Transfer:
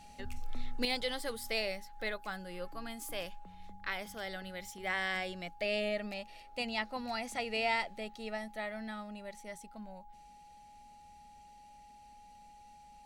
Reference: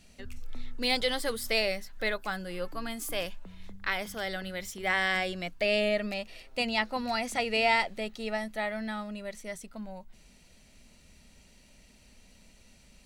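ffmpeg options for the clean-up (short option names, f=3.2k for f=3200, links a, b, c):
-af "bandreject=f=830:w=30,asetnsamples=n=441:p=0,asendcmd='0.85 volume volume 7dB',volume=0dB"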